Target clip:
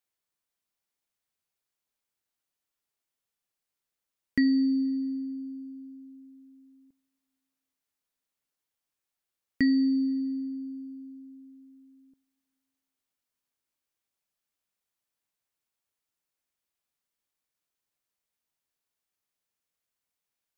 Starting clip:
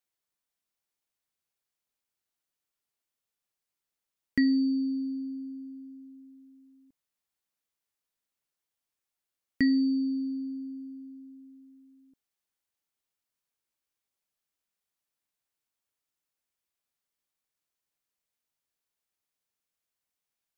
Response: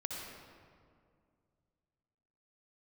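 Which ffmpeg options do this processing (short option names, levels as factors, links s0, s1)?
-filter_complex "[0:a]asplit=2[s0][s1];[1:a]atrim=start_sample=2205,lowpass=3600[s2];[s1][s2]afir=irnorm=-1:irlink=0,volume=0.0944[s3];[s0][s3]amix=inputs=2:normalize=0"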